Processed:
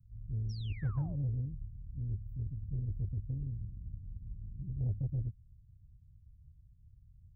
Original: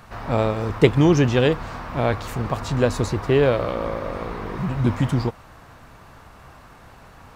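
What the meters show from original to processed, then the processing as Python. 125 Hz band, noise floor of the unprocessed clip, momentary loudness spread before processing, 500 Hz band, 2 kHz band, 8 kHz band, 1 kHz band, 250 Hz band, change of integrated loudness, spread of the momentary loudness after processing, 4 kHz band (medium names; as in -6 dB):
-12.0 dB, -47 dBFS, 12 LU, -39.0 dB, under -30 dB, under -30 dB, under -30 dB, -23.5 dB, -17.5 dB, 12 LU, under -25 dB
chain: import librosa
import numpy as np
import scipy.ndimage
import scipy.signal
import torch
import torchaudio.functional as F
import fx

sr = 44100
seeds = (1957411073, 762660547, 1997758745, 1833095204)

y = scipy.signal.sosfilt(scipy.signal.cheby2(4, 80, [650.0, 8300.0], 'bandstop', fs=sr, output='sos'), x)
y = fx.spec_paint(y, sr, seeds[0], shape='fall', start_s=0.49, length_s=0.67, low_hz=520.0, high_hz=5900.0, level_db=-48.0)
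y = fx.cheby_harmonics(y, sr, harmonics=(6,), levels_db=(-25,), full_scale_db=-18.0)
y = y * 10.0 ** (-7.0 / 20.0)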